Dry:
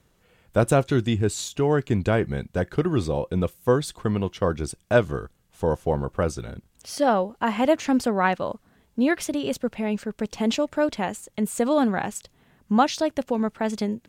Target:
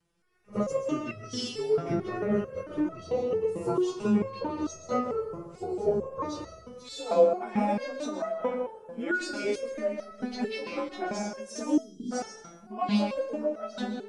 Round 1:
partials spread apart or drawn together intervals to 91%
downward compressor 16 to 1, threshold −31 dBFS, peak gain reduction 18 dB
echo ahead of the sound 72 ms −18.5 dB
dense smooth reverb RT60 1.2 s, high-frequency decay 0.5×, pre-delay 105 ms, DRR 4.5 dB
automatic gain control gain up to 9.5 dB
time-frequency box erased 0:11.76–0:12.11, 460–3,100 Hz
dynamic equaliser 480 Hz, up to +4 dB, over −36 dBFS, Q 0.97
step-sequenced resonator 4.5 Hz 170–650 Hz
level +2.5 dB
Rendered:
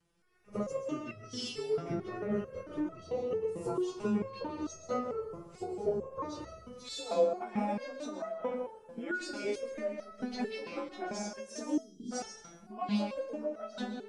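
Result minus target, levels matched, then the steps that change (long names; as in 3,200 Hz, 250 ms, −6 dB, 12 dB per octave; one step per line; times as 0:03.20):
downward compressor: peak gain reduction +7 dB
change: downward compressor 16 to 1, threshold −23.5 dBFS, peak gain reduction 11 dB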